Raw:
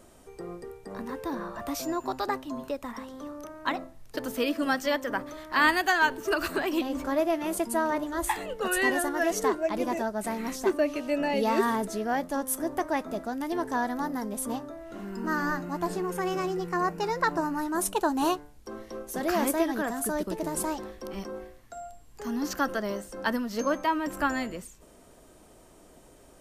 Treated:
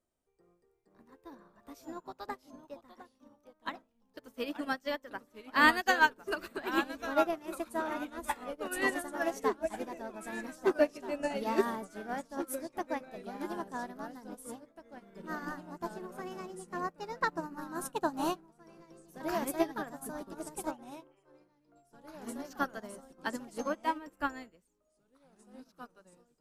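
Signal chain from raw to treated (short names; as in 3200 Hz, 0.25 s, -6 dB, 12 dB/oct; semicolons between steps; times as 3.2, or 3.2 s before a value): 20.71–21.76 brick-wall FIR band-pass 290–3300 Hz; echoes that change speed 0.427 s, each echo -2 st, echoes 2, each echo -6 dB; upward expander 2.5:1, over -40 dBFS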